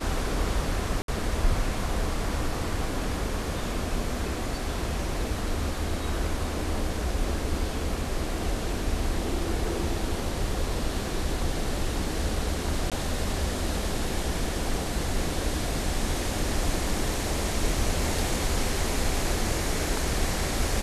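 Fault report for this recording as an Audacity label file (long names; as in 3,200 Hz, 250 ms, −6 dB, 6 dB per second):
1.020000	1.080000	drop-out 62 ms
12.900000	12.920000	drop-out 17 ms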